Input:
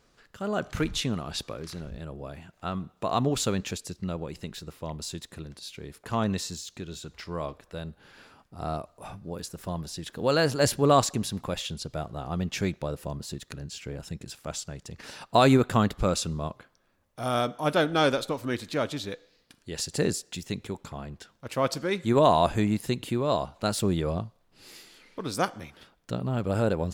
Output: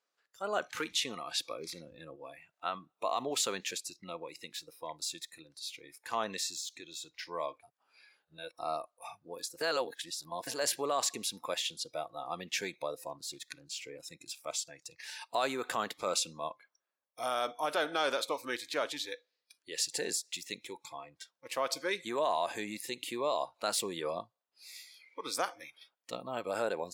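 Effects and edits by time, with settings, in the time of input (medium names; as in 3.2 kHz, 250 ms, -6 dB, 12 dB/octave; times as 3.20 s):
1.51–2.16 s: bass shelf 430 Hz +7 dB
7.63–8.59 s: reverse
9.61–10.47 s: reverse
13.09–13.66 s: loudspeaker Doppler distortion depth 0.23 ms
whole clip: spectral noise reduction 18 dB; peak limiter -19 dBFS; high-pass 560 Hz 12 dB/octave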